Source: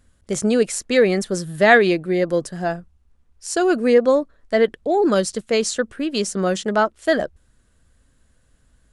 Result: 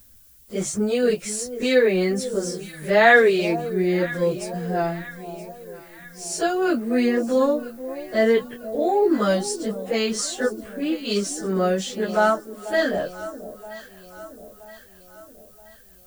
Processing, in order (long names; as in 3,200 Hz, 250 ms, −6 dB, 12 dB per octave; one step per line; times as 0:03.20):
time stretch by phase vocoder 1.8×
background noise violet −53 dBFS
delay that swaps between a low-pass and a high-pass 487 ms, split 920 Hz, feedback 69%, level −13 dB